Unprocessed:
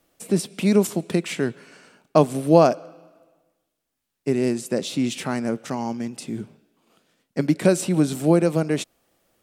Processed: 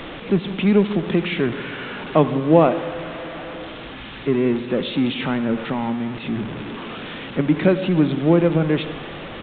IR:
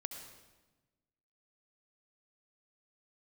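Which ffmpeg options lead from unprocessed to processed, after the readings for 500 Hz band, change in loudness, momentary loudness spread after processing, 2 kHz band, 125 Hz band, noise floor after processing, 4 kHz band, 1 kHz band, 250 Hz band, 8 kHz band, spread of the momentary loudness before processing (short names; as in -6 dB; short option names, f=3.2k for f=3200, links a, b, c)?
+1.5 dB, +1.5 dB, 15 LU, +6.0 dB, +3.0 dB, -35 dBFS, +4.5 dB, +1.5 dB, +3.0 dB, under -40 dB, 14 LU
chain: -filter_complex "[0:a]aeval=exprs='val(0)+0.5*0.0501*sgn(val(0))':c=same,asplit=2[a][b];[b]equalizer=f=650:t=o:w=0.25:g=-11.5[c];[1:a]atrim=start_sample=2205[d];[c][d]afir=irnorm=-1:irlink=0,volume=2dB[e];[a][e]amix=inputs=2:normalize=0,aresample=8000,aresample=44100,volume=-4.5dB"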